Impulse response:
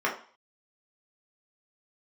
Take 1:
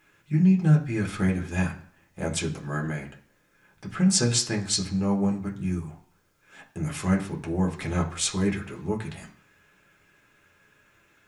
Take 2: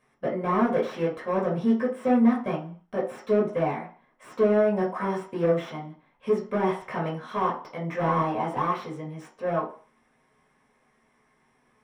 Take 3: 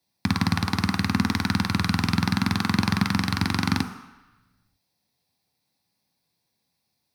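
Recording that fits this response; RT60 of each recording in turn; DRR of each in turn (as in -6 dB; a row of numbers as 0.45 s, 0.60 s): 2; 0.55 s, 0.45 s, 1.0 s; -1.0 dB, -4.0 dB, 6.0 dB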